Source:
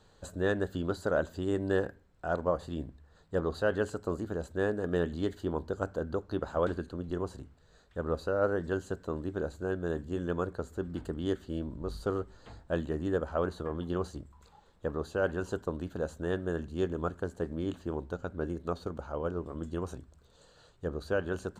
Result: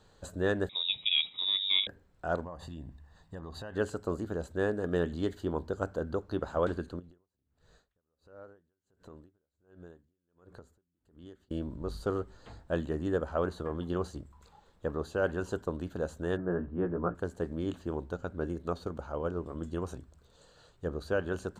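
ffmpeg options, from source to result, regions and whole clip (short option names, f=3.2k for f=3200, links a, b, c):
-filter_complex "[0:a]asettb=1/sr,asplit=3[a][b][c];[a]atrim=end=0.694[d];[b]atrim=start=0.69:end=1.87,asetpts=PTS-STARTPTS,afade=t=in:d=0.004:c=qsin,afade=t=out:st=1.176:d=0.004:c=qsin,lowpass=f=3.3k:t=q:w=0.5098,lowpass=f=3.3k:t=q:w=0.6013,lowpass=f=3.3k:t=q:w=0.9,lowpass=f=3.3k:t=q:w=2.563,afreqshift=-3900,equalizer=f=160:t=o:w=2:g=12[e];[c]atrim=start=1.866[f];[d][e]acrossfade=d=0.004:c1=hsin:c2=qsin[g];[g][f]acrossfade=d=0.004:c1=qsin:c2=hsin,asettb=1/sr,asplit=3[h][i][j];[h]atrim=end=2.444[k];[i]atrim=start=2.44:end=3.76,asetpts=PTS-STARTPTS,afade=t=in:d=0.004:c=qsin,afade=t=out:st=1.316:d=0.004:c=qsin,aecho=1:1:1.1:0.48,atrim=end_sample=58212,acompressor=threshold=-39dB:ratio=6:attack=3.2:release=140:knee=1:detection=peak[l];[j]atrim=start=3.756[m];[k][l]acrossfade=d=0.004:c1=hsin:c2=qsin[n];[n][m]acrossfade=d=0.004:c1=qsin:c2=hsin,asettb=1/sr,asplit=3[o][p][q];[o]atrim=end=6.994[r];[p]atrim=start=6.99:end=11.51,asetpts=PTS-STARTPTS,afade=t=in:d=0.004:c=qsin,afade=t=out:st=4.516:d=0.004:c=qsin,acompressor=threshold=-44dB:ratio=12:attack=3.2:release=140:knee=1:detection=peak,aeval=exprs='val(0)*pow(10,-37*(0.5-0.5*cos(2*PI*1.4*n/s))/20)':c=same[s];[q]atrim=start=11.506[t];[r][s]acrossfade=d=0.004:c1=hsin:c2=qsin[u];[u][t]acrossfade=d=0.004:c1=qsin:c2=hsin,asettb=1/sr,asplit=3[v][w][x];[v]atrim=end=16.374[y];[w]atrim=start=16.37:end=17.15,asetpts=PTS-STARTPTS,afade=t=in:d=0.004:c=qsin,afade=t=out:st=0.776:d=0.004:c=qsin,lowpass=f=1.7k:w=0.5412,lowpass=f=1.7k:w=1.3066,asplit=2[z][aa];[aa]adelay=17,volume=-3.5dB[ab];[z][ab]amix=inputs=2:normalize=0,atrim=end_sample=34398[ac];[x]atrim=start=17.146[ad];[y][ac]acrossfade=d=0.004:c1=hsin:c2=qsin[ae];[ae][ad]acrossfade=d=0.004:c1=qsin:c2=hsin"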